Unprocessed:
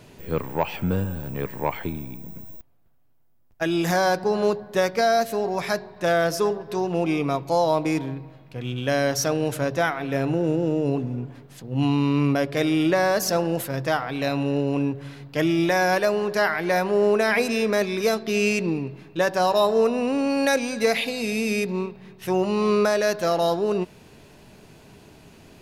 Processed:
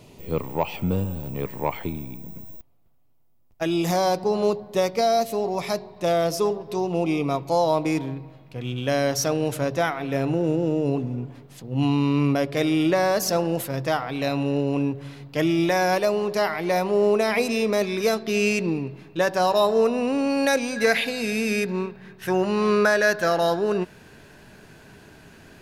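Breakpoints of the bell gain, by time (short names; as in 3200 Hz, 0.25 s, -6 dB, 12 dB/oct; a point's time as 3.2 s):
bell 1600 Hz 0.35 oct
-13.5 dB
from 1.42 s -7.5 dB
from 3.74 s -14.5 dB
from 7.31 s -4 dB
from 15.96 s -10 dB
from 17.83 s -0.5 dB
from 20.76 s +11.5 dB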